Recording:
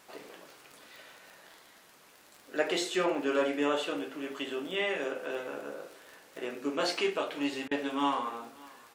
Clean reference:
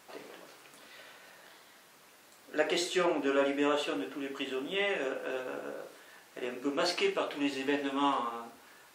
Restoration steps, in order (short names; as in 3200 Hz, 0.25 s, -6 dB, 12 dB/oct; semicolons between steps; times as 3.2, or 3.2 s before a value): de-click; interpolate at 7.68, 31 ms; inverse comb 0.576 s -23 dB